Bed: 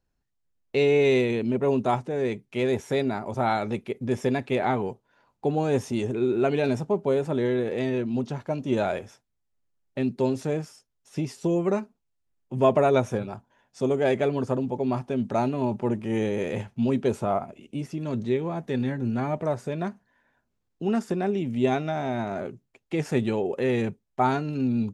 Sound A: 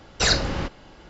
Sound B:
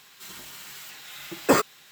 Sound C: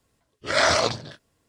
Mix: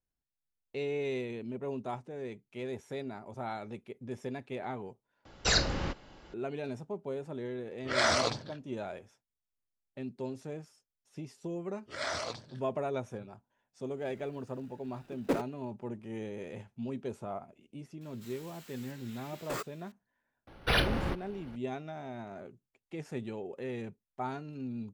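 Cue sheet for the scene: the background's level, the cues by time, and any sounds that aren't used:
bed -14 dB
5.25 s: replace with A -6.5 dB
7.41 s: add C -7.5 dB + level-controlled noise filter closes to 2.8 kHz, open at -16.5 dBFS
11.44 s: add C -16 dB
13.80 s: add B -8 dB + median filter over 41 samples
18.01 s: add B -13 dB + hard clipper -20.5 dBFS
20.47 s: add A -5 dB + decimation joined by straight lines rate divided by 6×

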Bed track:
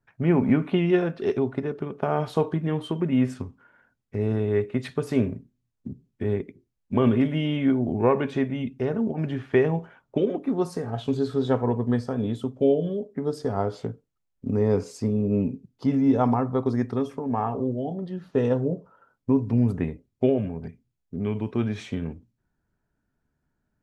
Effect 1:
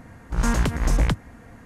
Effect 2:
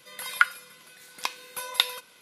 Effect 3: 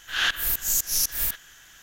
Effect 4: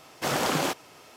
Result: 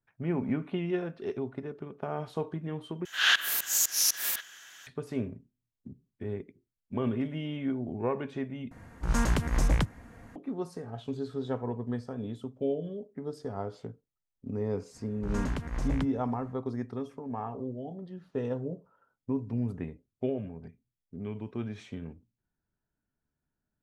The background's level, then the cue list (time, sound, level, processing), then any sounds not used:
bed track -10 dB
3.05 s: replace with 3 -0.5 dB + frequency weighting A
8.71 s: replace with 1 -5 dB
14.91 s: add 1 -11.5 dB, fades 0.05 s + treble shelf 6.8 kHz -10.5 dB
not used: 2, 4

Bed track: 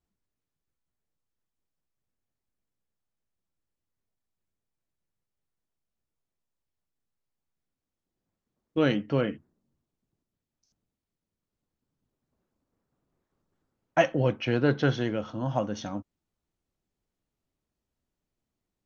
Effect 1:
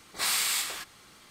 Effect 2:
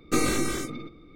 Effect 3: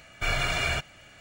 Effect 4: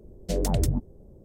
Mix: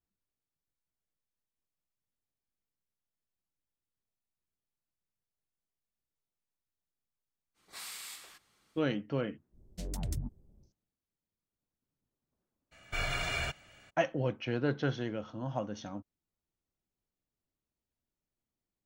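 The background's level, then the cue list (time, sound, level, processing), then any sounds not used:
bed track -7.5 dB
7.54 s: add 1 -17 dB, fades 0.05 s
9.49 s: add 4 -11 dB, fades 0.10 s + peaking EQ 480 Hz -11 dB 1.2 oct
12.71 s: add 3 -7 dB, fades 0.02 s
not used: 2

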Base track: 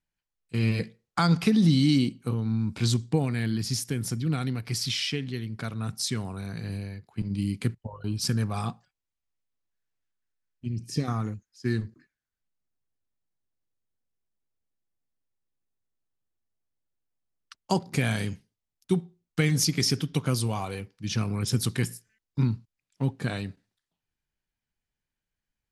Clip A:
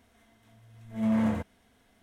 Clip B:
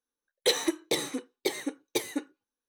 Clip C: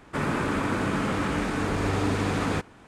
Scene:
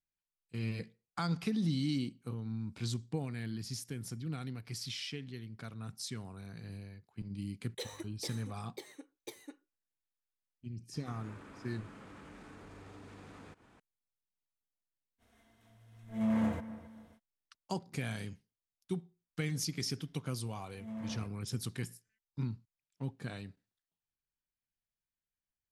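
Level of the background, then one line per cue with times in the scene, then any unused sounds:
base track -12 dB
7.32 s: add B -17.5 dB
10.93 s: add C -12 dB + compression 3:1, threshold -42 dBFS
15.18 s: add A -5 dB, fades 0.05 s + bucket-brigade echo 267 ms, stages 4096, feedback 36%, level -15 dB
19.85 s: add A -16.5 dB

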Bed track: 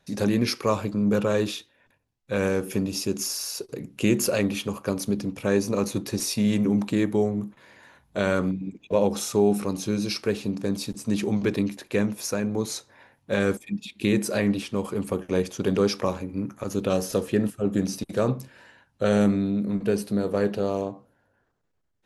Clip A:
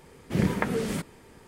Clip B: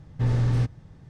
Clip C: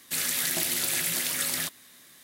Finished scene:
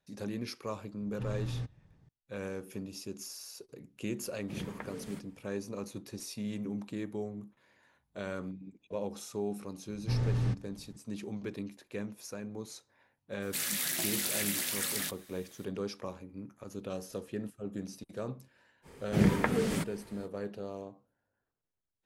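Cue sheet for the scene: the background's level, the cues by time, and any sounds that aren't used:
bed track -15 dB
1.00 s: add B -14 dB
4.18 s: add A -16 dB
9.88 s: add B -7.5 dB
13.42 s: add C -5.5 dB
18.82 s: add A -1.5 dB, fades 0.05 s

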